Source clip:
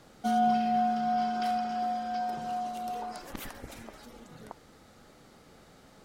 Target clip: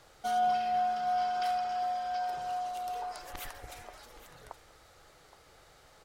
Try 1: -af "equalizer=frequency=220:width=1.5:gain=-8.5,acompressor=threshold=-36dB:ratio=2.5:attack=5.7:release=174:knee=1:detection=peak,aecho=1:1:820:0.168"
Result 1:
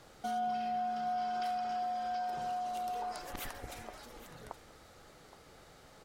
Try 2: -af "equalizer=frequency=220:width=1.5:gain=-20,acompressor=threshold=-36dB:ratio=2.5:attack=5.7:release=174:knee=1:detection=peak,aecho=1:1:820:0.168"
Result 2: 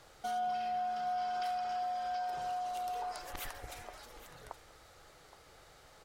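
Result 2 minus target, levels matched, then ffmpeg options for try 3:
downward compressor: peak gain reduction +7.5 dB
-af "equalizer=frequency=220:width=1.5:gain=-20,aecho=1:1:820:0.168"

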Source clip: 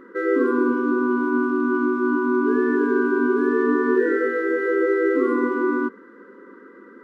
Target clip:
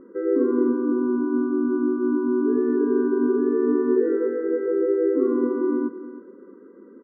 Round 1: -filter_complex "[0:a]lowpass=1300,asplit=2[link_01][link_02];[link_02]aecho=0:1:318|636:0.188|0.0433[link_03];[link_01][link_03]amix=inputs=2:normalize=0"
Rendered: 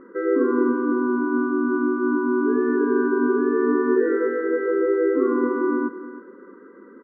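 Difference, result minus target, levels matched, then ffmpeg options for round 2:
1,000 Hz band +8.0 dB
-filter_complex "[0:a]lowpass=610,asplit=2[link_01][link_02];[link_02]aecho=0:1:318|636:0.188|0.0433[link_03];[link_01][link_03]amix=inputs=2:normalize=0"

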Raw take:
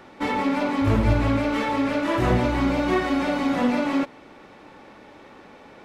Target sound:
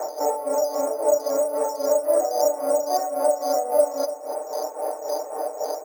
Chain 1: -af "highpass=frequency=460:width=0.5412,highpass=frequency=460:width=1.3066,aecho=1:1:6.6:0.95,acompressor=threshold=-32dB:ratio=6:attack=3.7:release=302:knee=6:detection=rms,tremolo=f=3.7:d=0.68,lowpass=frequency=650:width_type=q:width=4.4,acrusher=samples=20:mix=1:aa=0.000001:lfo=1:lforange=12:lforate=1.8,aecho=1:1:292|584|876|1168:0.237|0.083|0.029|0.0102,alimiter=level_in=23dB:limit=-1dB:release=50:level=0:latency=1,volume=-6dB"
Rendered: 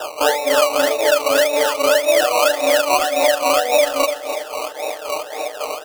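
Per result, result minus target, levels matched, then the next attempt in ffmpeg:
sample-and-hold swept by an LFO: distortion +14 dB; downward compressor: peak gain reduction −7.5 dB
-af "highpass=frequency=460:width=0.5412,highpass=frequency=460:width=1.3066,aecho=1:1:6.6:0.95,acompressor=threshold=-32dB:ratio=6:attack=3.7:release=302:knee=6:detection=rms,tremolo=f=3.7:d=0.68,lowpass=frequency=650:width_type=q:width=4.4,acrusher=samples=6:mix=1:aa=0.000001:lfo=1:lforange=3.6:lforate=1.8,aecho=1:1:292|584|876|1168:0.237|0.083|0.029|0.0102,alimiter=level_in=23dB:limit=-1dB:release=50:level=0:latency=1,volume=-6dB"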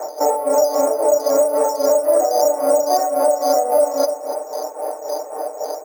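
downward compressor: peak gain reduction −7.5 dB
-af "highpass=frequency=460:width=0.5412,highpass=frequency=460:width=1.3066,aecho=1:1:6.6:0.95,acompressor=threshold=-41dB:ratio=6:attack=3.7:release=302:knee=6:detection=rms,tremolo=f=3.7:d=0.68,lowpass=frequency=650:width_type=q:width=4.4,acrusher=samples=6:mix=1:aa=0.000001:lfo=1:lforange=3.6:lforate=1.8,aecho=1:1:292|584|876|1168:0.237|0.083|0.029|0.0102,alimiter=level_in=23dB:limit=-1dB:release=50:level=0:latency=1,volume=-6dB"

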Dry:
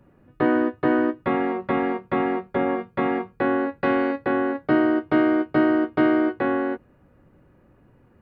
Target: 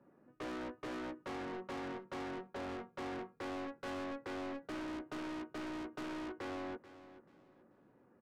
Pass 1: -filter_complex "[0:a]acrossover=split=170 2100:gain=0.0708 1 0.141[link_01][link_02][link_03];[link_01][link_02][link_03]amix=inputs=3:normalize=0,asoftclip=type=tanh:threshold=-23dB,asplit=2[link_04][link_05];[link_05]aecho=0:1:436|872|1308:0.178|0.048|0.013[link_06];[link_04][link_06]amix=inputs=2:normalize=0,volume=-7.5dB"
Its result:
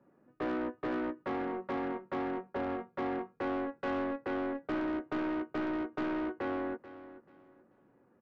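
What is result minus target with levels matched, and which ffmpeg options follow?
soft clipping: distortion −5 dB
-filter_complex "[0:a]acrossover=split=170 2100:gain=0.0708 1 0.141[link_01][link_02][link_03];[link_01][link_02][link_03]amix=inputs=3:normalize=0,asoftclip=type=tanh:threshold=-33.5dB,asplit=2[link_04][link_05];[link_05]aecho=0:1:436|872|1308:0.178|0.048|0.013[link_06];[link_04][link_06]amix=inputs=2:normalize=0,volume=-7.5dB"

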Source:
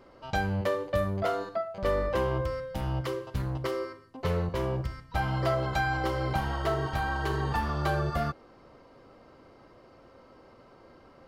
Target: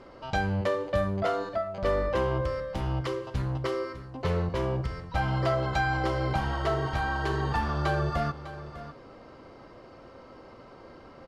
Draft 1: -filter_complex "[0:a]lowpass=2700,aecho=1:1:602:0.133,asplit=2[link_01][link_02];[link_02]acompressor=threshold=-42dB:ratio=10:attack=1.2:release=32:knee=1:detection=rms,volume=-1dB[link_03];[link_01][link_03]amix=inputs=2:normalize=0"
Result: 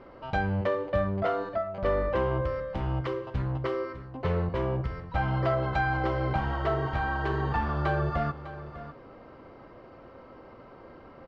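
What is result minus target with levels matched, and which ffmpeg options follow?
8,000 Hz band −14.5 dB
-filter_complex "[0:a]lowpass=8000,aecho=1:1:602:0.133,asplit=2[link_01][link_02];[link_02]acompressor=threshold=-42dB:ratio=10:attack=1.2:release=32:knee=1:detection=rms,volume=-1dB[link_03];[link_01][link_03]amix=inputs=2:normalize=0"

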